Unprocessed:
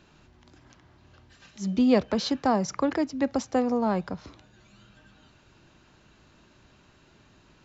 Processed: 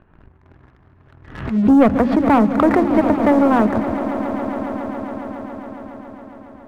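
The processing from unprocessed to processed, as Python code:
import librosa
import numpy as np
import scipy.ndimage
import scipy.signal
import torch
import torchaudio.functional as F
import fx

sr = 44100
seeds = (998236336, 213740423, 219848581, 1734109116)

y = fx.speed_glide(x, sr, from_pct=103, to_pct=126)
y = scipy.signal.sosfilt(scipy.signal.butter(4, 1900.0, 'lowpass', fs=sr, output='sos'), y)
y = fx.low_shelf(y, sr, hz=100.0, db=12.0)
y = fx.hum_notches(y, sr, base_hz=50, count=7)
y = fx.leveller(y, sr, passes=2)
y = fx.echo_swell(y, sr, ms=138, loudest=5, wet_db=-15)
y = fx.pre_swell(y, sr, db_per_s=85.0)
y = y * 10.0 ** (3.5 / 20.0)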